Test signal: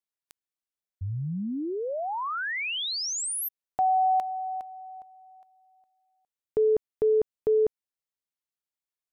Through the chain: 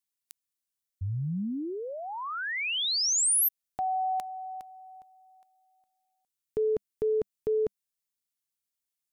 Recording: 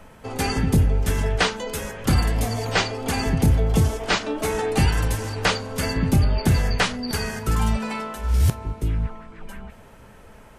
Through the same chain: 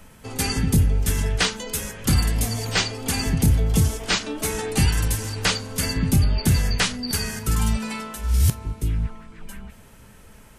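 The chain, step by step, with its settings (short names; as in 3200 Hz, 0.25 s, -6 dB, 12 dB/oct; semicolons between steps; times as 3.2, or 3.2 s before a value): EQ curve 200 Hz 0 dB, 660 Hz -7 dB, 9500 Hz +7 dB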